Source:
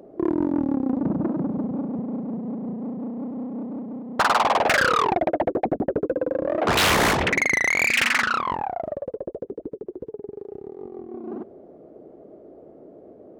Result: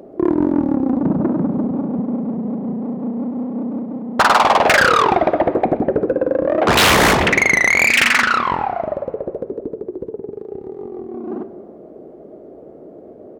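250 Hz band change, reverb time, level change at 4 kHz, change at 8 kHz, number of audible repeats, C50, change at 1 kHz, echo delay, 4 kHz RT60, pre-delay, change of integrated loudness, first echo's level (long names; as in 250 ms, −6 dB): +7.0 dB, 1.7 s, +6.5 dB, +6.5 dB, 1, 12.5 dB, +7.0 dB, 127 ms, 1.2 s, 5 ms, +7.0 dB, −20.5 dB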